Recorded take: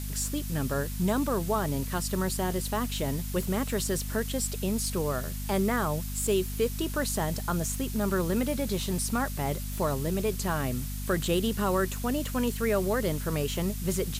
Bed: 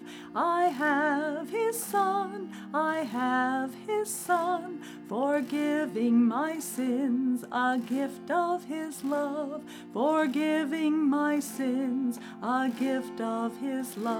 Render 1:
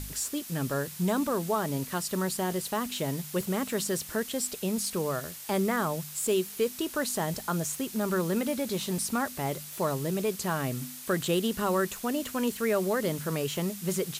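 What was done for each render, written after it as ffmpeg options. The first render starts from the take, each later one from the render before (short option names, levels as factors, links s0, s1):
-af "bandreject=f=50:t=h:w=4,bandreject=f=100:t=h:w=4,bandreject=f=150:t=h:w=4,bandreject=f=200:t=h:w=4,bandreject=f=250:t=h:w=4"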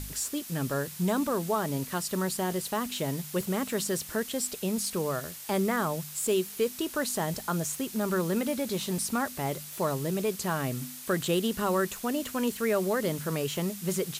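-af anull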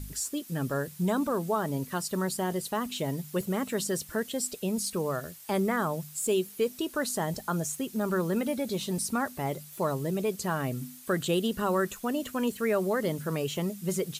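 -af "afftdn=nr=9:nf=-43"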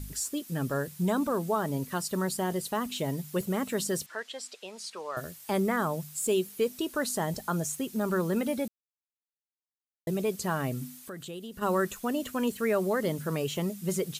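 -filter_complex "[0:a]asettb=1/sr,asplit=3[s0][s1][s2];[s0]atrim=end=4.064[s3];[s1]atrim=start=4.06:end=5.17,asetpts=PTS-STARTPTS,afade=t=in:d=0.004:c=qsin,afade=t=out:st=1.106:d=0.004:c=qsin,highpass=760,lowpass=4800[s4];[s2]atrim=start=5.166[s5];[s3][s4]acrossfade=d=0.004:c1=hsin:c2=qsin[s6];[s6][s5]acrossfade=d=0.004:c1=qsin:c2=hsin,asplit=3[s7][s8][s9];[s7]afade=t=out:st=10.99:d=0.02[s10];[s8]acompressor=threshold=0.00631:ratio=2.5:attack=3.2:release=140:knee=1:detection=peak,afade=t=in:st=10.99:d=0.02,afade=t=out:st=11.61:d=0.02[s11];[s9]afade=t=in:st=11.61:d=0.02[s12];[s10][s11][s12]amix=inputs=3:normalize=0,asplit=3[s13][s14][s15];[s13]atrim=end=8.68,asetpts=PTS-STARTPTS,afade=t=out:st=8.676:d=0.004:c=hsin[s16];[s14]atrim=start=8.68:end=10.07,asetpts=PTS-STARTPTS,volume=0[s17];[s15]atrim=start=10.07,asetpts=PTS-STARTPTS,afade=t=in:d=0.004:c=hsin[s18];[s16][s17][s18]concat=n=3:v=0:a=1"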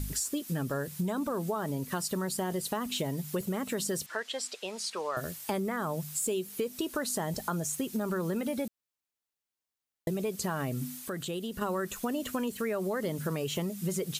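-filter_complex "[0:a]asplit=2[s0][s1];[s1]alimiter=limit=0.0631:level=0:latency=1,volume=0.794[s2];[s0][s2]amix=inputs=2:normalize=0,acompressor=threshold=0.0355:ratio=6"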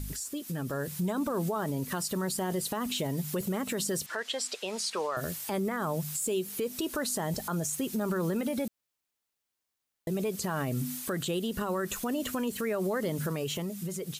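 -af "alimiter=level_in=1.58:limit=0.0631:level=0:latency=1:release=89,volume=0.631,dynaudnorm=f=110:g=13:m=1.78"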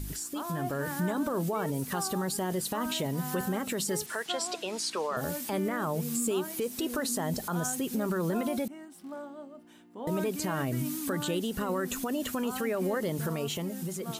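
-filter_complex "[1:a]volume=0.251[s0];[0:a][s0]amix=inputs=2:normalize=0"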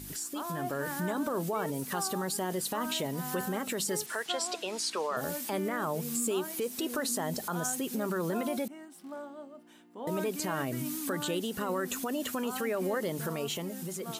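-af "highpass=f=230:p=1"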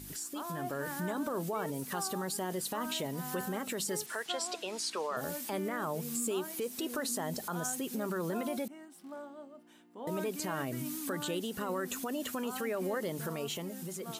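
-af "volume=0.708"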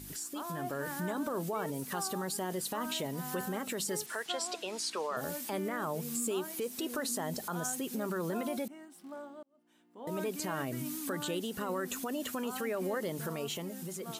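-filter_complex "[0:a]asplit=2[s0][s1];[s0]atrim=end=9.43,asetpts=PTS-STARTPTS,afade=t=out:st=9.426:d=0.004:c=hsin[s2];[s1]atrim=start=9.43,asetpts=PTS-STARTPTS,afade=t=in:d=0.81[s3];[s2][s3]concat=n=2:v=0:a=1"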